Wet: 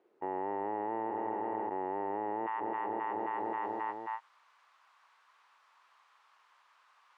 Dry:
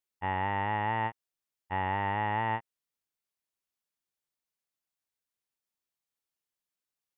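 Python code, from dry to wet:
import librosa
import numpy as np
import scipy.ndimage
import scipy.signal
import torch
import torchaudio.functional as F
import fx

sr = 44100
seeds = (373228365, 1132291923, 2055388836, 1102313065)

y = fx.ladder_bandpass(x, sr, hz=fx.steps((0.0, 420.0), (2.46, 1200.0)), resonance_pct=60)
y = fx.echo_feedback(y, sr, ms=266, feedback_pct=59, wet_db=-17.0)
y = fx.env_flatten(y, sr, amount_pct=100)
y = y * librosa.db_to_amplitude(2.5)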